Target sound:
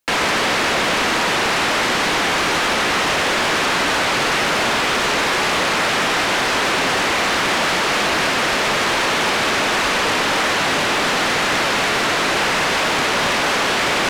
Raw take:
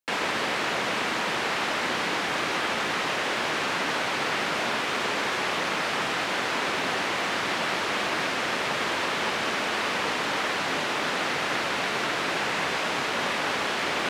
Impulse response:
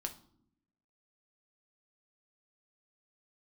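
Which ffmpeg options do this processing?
-af "aeval=exprs='0.188*sin(PI/2*2.82*val(0)/0.188)':c=same"

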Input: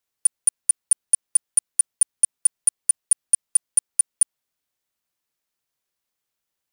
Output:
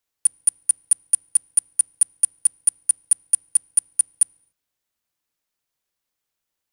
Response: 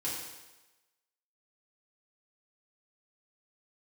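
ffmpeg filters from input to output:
-filter_complex "[0:a]asplit=2[s0][s1];[s1]aemphasis=mode=reproduction:type=riaa[s2];[1:a]atrim=start_sample=2205,afade=t=out:st=0.34:d=0.01,atrim=end_sample=15435[s3];[s2][s3]afir=irnorm=-1:irlink=0,volume=0.0794[s4];[s0][s4]amix=inputs=2:normalize=0"

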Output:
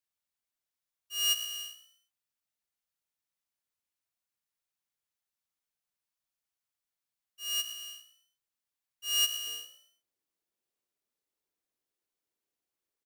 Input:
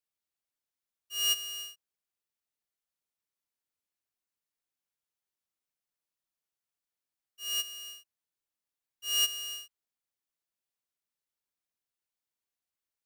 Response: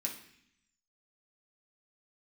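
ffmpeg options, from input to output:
-filter_complex "[0:a]asetnsamples=n=441:p=0,asendcmd='9.47 equalizer g 9.5',equalizer=f=370:w=1.1:g=-4.5,asplit=4[s0][s1][s2][s3];[s1]adelay=117,afreqshift=60,volume=0.2[s4];[s2]adelay=234,afreqshift=120,volume=0.0676[s5];[s3]adelay=351,afreqshift=180,volume=0.0232[s6];[s0][s4][s5][s6]amix=inputs=4:normalize=0"

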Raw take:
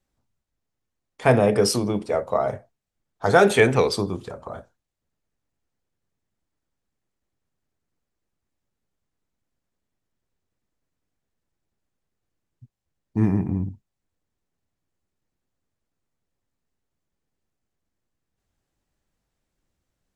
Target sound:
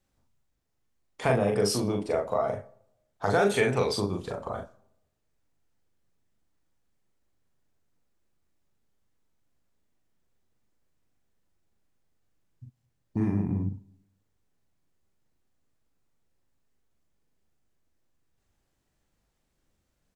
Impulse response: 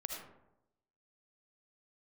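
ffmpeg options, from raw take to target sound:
-filter_complex "[0:a]acompressor=threshold=0.0282:ratio=2,asplit=2[s0][s1];[s1]adelay=40,volume=0.708[s2];[s0][s2]amix=inputs=2:normalize=0,asplit=2[s3][s4];[1:a]atrim=start_sample=2205[s5];[s4][s5]afir=irnorm=-1:irlink=0,volume=0.112[s6];[s3][s6]amix=inputs=2:normalize=0"

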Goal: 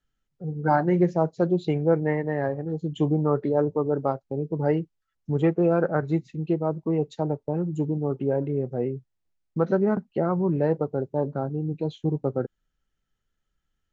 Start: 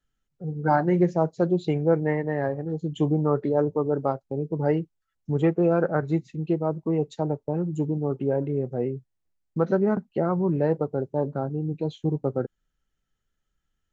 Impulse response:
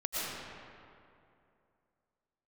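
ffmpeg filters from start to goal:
-af "lowpass=7100"

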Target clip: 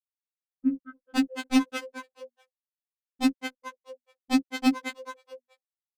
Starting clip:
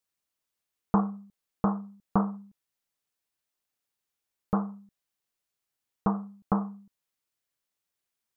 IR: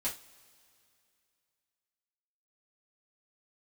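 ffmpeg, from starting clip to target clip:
-filter_complex "[0:a]bandreject=f=60:t=h:w=6,bandreject=f=120:t=h:w=6,afftfilt=real='re*gte(hypot(re,im),0.355)':imag='im*gte(hypot(re,im),0.355)':win_size=1024:overlap=0.75,lowshelf=f=120:g=6,aecho=1:1:2.9:0.4,dynaudnorm=f=220:g=11:m=4.22,aeval=exprs='(mod(3.76*val(0)+1,2)-1)/3.76':c=same,adynamicsmooth=sensitivity=0.5:basefreq=1200,asetrate=61740,aresample=44100,asplit=5[s0][s1][s2][s3][s4];[s1]adelay=215,afreqshift=81,volume=0.447[s5];[s2]adelay=430,afreqshift=162,volume=0.143[s6];[s3]adelay=645,afreqshift=243,volume=0.0457[s7];[s4]adelay=860,afreqshift=324,volume=0.0146[s8];[s0][s5][s6][s7][s8]amix=inputs=5:normalize=0,afftfilt=real='re*3.46*eq(mod(b,12),0)':imag='im*3.46*eq(mod(b,12),0)':win_size=2048:overlap=0.75"

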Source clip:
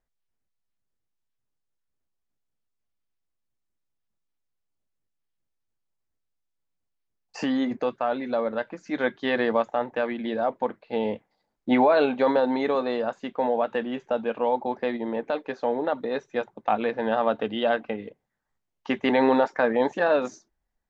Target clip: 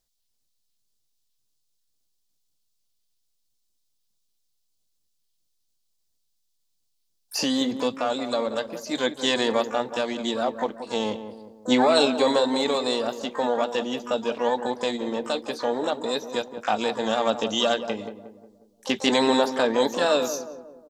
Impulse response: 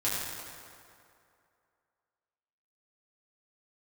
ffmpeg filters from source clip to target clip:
-filter_complex "[0:a]highshelf=f=2800:t=q:w=1.5:g=13.5,asplit=2[s0][s1];[s1]asetrate=88200,aresample=44100,atempo=0.5,volume=0.251[s2];[s0][s2]amix=inputs=2:normalize=0,asplit=2[s3][s4];[s4]adelay=180,lowpass=f=1100:p=1,volume=0.335,asplit=2[s5][s6];[s6]adelay=180,lowpass=f=1100:p=1,volume=0.5,asplit=2[s7][s8];[s8]adelay=180,lowpass=f=1100:p=1,volume=0.5,asplit=2[s9][s10];[s10]adelay=180,lowpass=f=1100:p=1,volume=0.5,asplit=2[s11][s12];[s12]adelay=180,lowpass=f=1100:p=1,volume=0.5,asplit=2[s13][s14];[s14]adelay=180,lowpass=f=1100:p=1,volume=0.5[s15];[s3][s5][s7][s9][s11][s13][s15]amix=inputs=7:normalize=0"

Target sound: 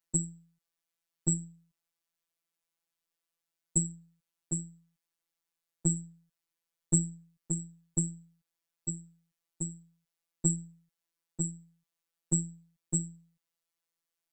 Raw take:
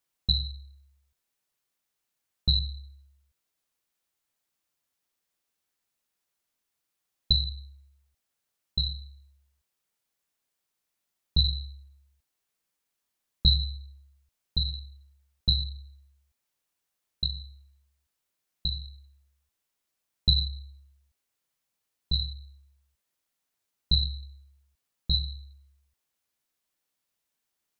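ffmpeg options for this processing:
-af "afftfilt=real='hypot(re,im)*cos(PI*b)':imag='0':win_size=2048:overlap=0.75,asetrate=85554,aresample=44100"

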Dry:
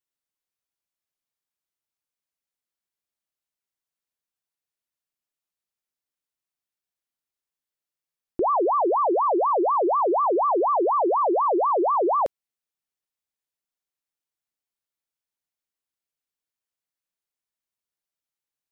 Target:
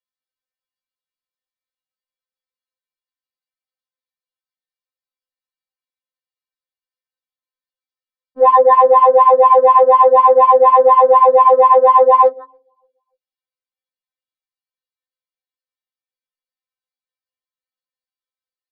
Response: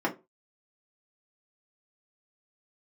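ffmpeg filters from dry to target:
-filter_complex "[0:a]lowshelf=f=230:g=-10.5,aecho=1:1:6:0.77,acontrast=88,asplit=2[s0][s1];[s1]adelay=292,lowpass=f=830:p=1,volume=0.0841,asplit=2[s2][s3];[s3]adelay=292,lowpass=f=830:p=1,volume=0.39,asplit=2[s4][s5];[s5]adelay=292,lowpass=f=830:p=1,volume=0.39[s6];[s2][s4][s6]amix=inputs=3:normalize=0[s7];[s0][s7]amix=inputs=2:normalize=0,afwtdn=0.0398,aresample=11025,aresample=44100,bandreject=f=54.4:t=h:w=4,bandreject=f=108.8:t=h:w=4,bandreject=f=163.2:t=h:w=4,bandreject=f=217.6:t=h:w=4,bandreject=f=272:t=h:w=4,bandreject=f=326.4:t=h:w=4,bandreject=f=380.8:t=h:w=4,bandreject=f=435.2:t=h:w=4,bandreject=f=489.6:t=h:w=4,bandreject=f=544:t=h:w=4,bandreject=f=598.4:t=h:w=4,bandreject=f=652.8:t=h:w=4,afftfilt=real='re*3.46*eq(mod(b,12),0)':imag='im*3.46*eq(mod(b,12),0)':win_size=2048:overlap=0.75,volume=2.37"

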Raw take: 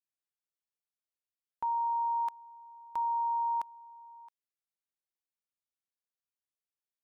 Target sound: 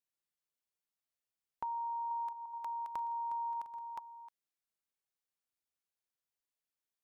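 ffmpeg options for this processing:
-filter_complex "[0:a]asettb=1/sr,asplit=3[s0][s1][s2];[s0]atrim=end=1.754[s3];[s1]atrim=start=1.75:end=3.99,asetpts=PTS-STARTPTS,afade=t=in:d=0.004:c=qsin,afade=t=out:st=2.236:d=0.004:c=qsin,aecho=1:1:360|576|705.6|783.4|830:0.631|0.398|0.251|0.158|0.1,atrim=end_sample=98784[s4];[s2]atrim=start=3.986[s5];[s3][s4]acrossfade=d=0.004:c1=hsin:c2=qsin[s6];[s6][s5]acrossfade=d=0.004:c1=qsin:c2=hsin,acompressor=threshold=0.0141:ratio=6"

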